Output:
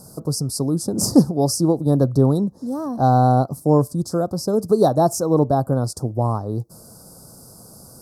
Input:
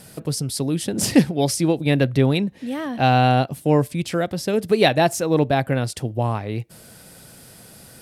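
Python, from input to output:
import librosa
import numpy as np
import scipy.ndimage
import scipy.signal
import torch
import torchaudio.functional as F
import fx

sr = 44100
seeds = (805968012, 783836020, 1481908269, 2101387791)

y = scipy.signal.sosfilt(scipy.signal.cheby1(3, 1.0, [1200.0, 5000.0], 'bandstop', fs=sr, output='sos'), x)
y = F.gain(torch.from_numpy(y), 2.0).numpy()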